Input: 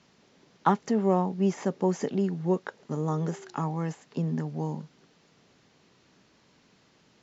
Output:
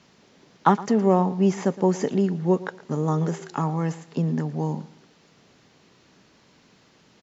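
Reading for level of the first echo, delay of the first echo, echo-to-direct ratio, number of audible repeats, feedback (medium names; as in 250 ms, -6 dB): -18.0 dB, 115 ms, -17.5 dB, 2, 31%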